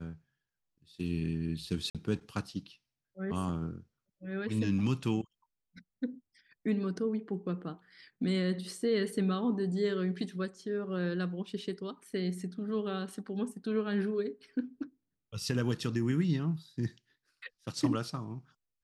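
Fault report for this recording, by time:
1.90–1.95 s: dropout 47 ms

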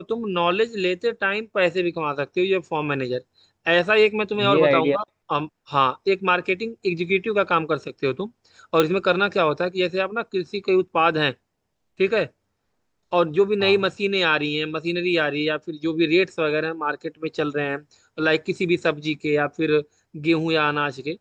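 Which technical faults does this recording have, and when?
8.80 s: pop -5 dBFS

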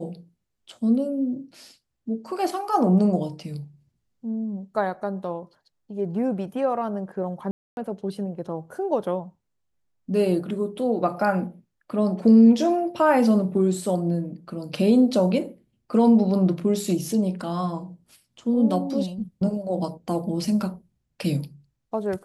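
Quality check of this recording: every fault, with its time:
7.51–7.77 s: dropout 261 ms

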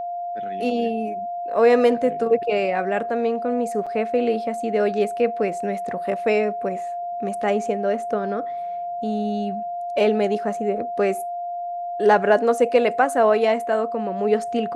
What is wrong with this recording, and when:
whine 700 Hz -26 dBFS
3.86–3.87 s: dropout 6.3 ms

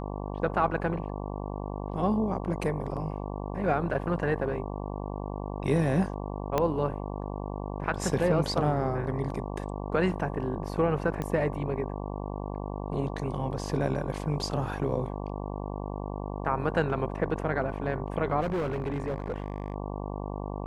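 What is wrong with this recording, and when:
buzz 50 Hz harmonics 23 -35 dBFS
6.58 s: pop -12 dBFS
11.22 s: pop -19 dBFS
18.40–19.74 s: clipped -26 dBFS

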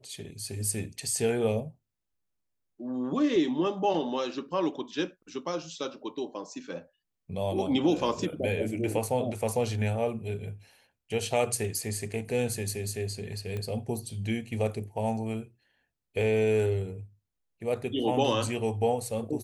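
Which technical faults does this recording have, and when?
13.57 s: pop -23 dBFS

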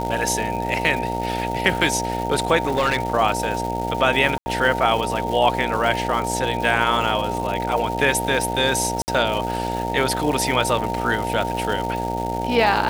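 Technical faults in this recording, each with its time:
buzz 60 Hz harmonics 15 -27 dBFS
crackle 400 per s -27 dBFS
whine 920 Hz -26 dBFS
2.62–3.13 s: clipped -14.5 dBFS
4.38–4.46 s: dropout 80 ms
9.02–9.08 s: dropout 59 ms

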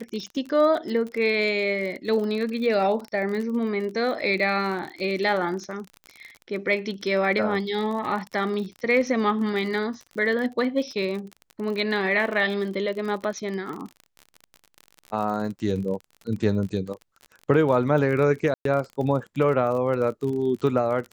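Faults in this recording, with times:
crackle 41 per s -31 dBFS
18.54–18.65 s: dropout 113 ms

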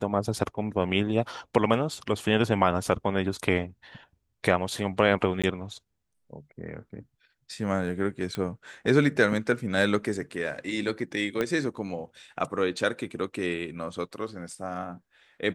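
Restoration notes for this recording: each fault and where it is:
5.42–5.44 s: dropout 16 ms
8.35 s: pop -18 dBFS
11.41 s: pop -14 dBFS

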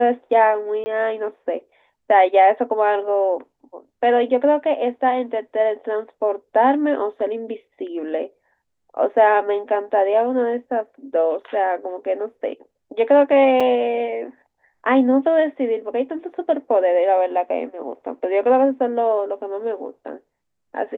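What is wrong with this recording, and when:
0.84–0.86 s: dropout 20 ms
13.60–13.61 s: dropout 5 ms

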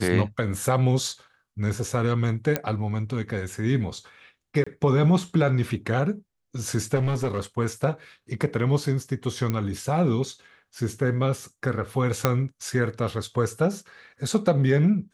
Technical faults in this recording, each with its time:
2.56 s: pop -8 dBFS
4.64–4.67 s: dropout 25 ms
6.95–7.40 s: clipped -20.5 dBFS
9.50 s: pop -13 dBFS
12.25 s: pop -5 dBFS

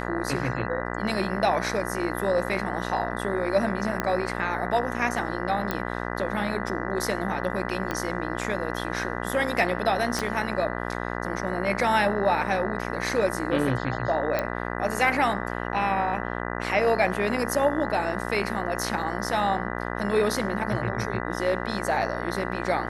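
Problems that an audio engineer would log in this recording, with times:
buzz 60 Hz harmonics 33 -31 dBFS
4.00 s: pop -11 dBFS
5.71 s: pop -12 dBFS
7.91 s: pop -14 dBFS
10.19 s: pop
14.39 s: pop -12 dBFS

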